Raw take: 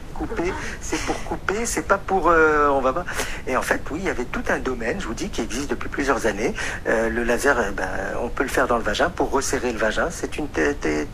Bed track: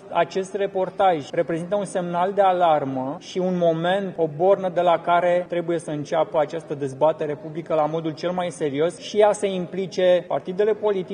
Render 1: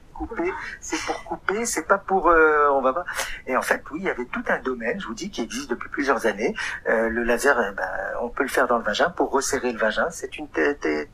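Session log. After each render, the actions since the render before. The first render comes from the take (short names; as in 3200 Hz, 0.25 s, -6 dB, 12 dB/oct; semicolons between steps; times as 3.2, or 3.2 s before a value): noise print and reduce 14 dB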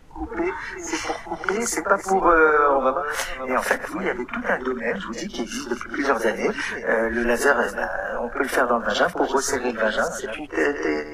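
reverse delay 0.315 s, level -11.5 dB; reverse echo 47 ms -10.5 dB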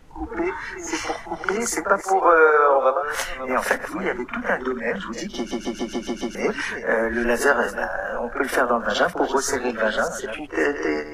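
2.01–3.03 resonant low shelf 310 Hz -13.5 dB, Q 1.5; 5.37 stutter in place 0.14 s, 7 plays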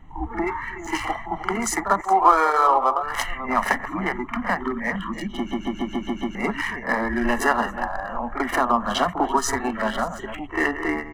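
Wiener smoothing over 9 samples; comb 1 ms, depth 77%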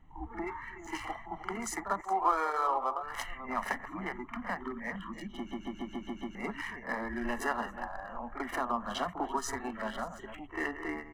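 gain -12.5 dB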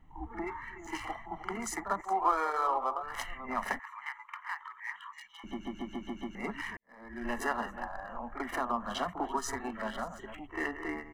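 3.79–5.44 elliptic high-pass 910 Hz; 6.77–7.32 fade in quadratic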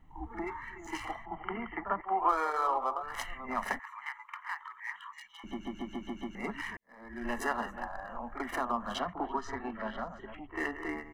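1.25–2.29 brick-wall FIR low-pass 3200 Hz; 8.99–10.56 air absorption 210 m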